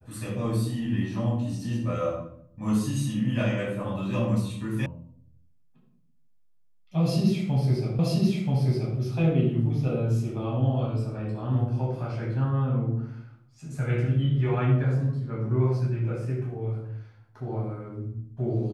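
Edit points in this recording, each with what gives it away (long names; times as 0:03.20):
0:04.86: cut off before it has died away
0:07.99: the same again, the last 0.98 s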